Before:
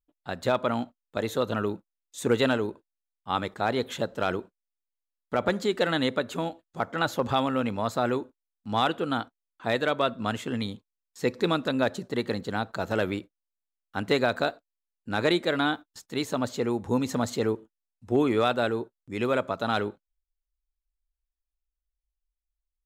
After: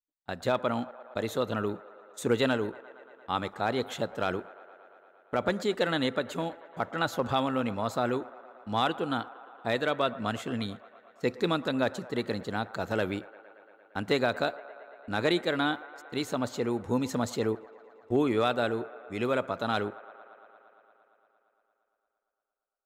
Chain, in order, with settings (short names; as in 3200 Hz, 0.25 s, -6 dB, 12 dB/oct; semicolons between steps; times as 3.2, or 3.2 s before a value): gate -43 dBFS, range -24 dB; on a send: band-limited delay 0.115 s, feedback 80%, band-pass 1000 Hz, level -17.5 dB; on the sum: gain -2.5 dB